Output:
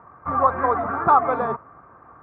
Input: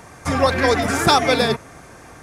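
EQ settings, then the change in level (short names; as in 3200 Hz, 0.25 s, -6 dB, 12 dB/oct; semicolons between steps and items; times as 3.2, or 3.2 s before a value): HPF 52 Hz; dynamic EQ 800 Hz, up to +6 dB, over -28 dBFS, Q 1.2; ladder low-pass 1300 Hz, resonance 70%; +1.0 dB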